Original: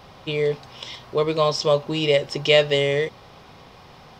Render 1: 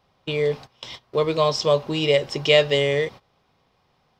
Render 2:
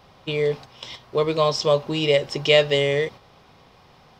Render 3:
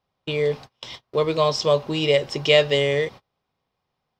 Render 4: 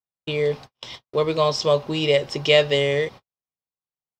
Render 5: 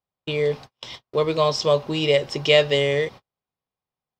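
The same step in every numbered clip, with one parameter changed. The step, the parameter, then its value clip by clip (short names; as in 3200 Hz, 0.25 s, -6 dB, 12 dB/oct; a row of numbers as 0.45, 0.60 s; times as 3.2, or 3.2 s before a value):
gate, range: -19, -6, -32, -58, -45 dB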